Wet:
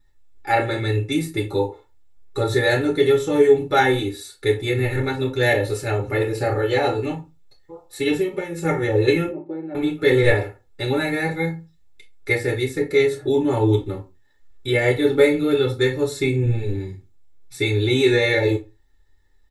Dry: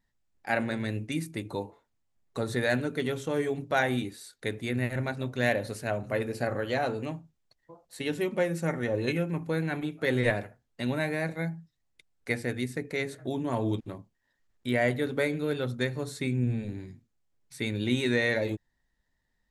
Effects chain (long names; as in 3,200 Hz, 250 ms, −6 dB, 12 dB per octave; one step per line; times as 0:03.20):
comb filter 2.3 ms, depth 87%
0:08.12–0:08.65: downward compressor 6 to 1, threshold −29 dBFS, peak gain reduction 10.5 dB
0:09.28–0:09.75: pair of resonant band-passes 460 Hz, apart 0.71 octaves
convolution reverb RT60 0.25 s, pre-delay 3 ms, DRR −2 dB